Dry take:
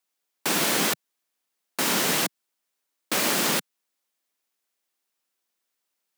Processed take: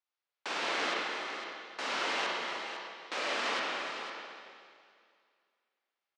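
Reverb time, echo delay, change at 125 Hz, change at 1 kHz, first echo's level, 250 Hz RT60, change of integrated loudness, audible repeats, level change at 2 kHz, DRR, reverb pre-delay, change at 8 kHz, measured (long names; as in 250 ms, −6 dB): 2.3 s, 297 ms, below −20 dB, −3.5 dB, −11.5 dB, 2.2 s, −11.0 dB, 2, −4.5 dB, −4.0 dB, 33 ms, −20.0 dB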